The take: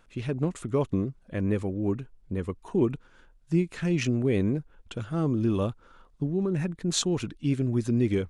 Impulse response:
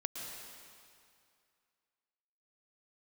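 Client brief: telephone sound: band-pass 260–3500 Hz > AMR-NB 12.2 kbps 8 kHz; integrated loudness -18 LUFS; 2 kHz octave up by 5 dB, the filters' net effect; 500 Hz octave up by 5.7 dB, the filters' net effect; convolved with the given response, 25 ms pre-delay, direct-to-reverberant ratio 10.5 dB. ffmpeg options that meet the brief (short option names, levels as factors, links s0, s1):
-filter_complex "[0:a]equalizer=f=500:t=o:g=8.5,equalizer=f=2000:t=o:g=6.5,asplit=2[s0][s1];[1:a]atrim=start_sample=2205,adelay=25[s2];[s1][s2]afir=irnorm=-1:irlink=0,volume=0.266[s3];[s0][s3]amix=inputs=2:normalize=0,highpass=260,lowpass=3500,volume=2.99" -ar 8000 -c:a libopencore_amrnb -b:a 12200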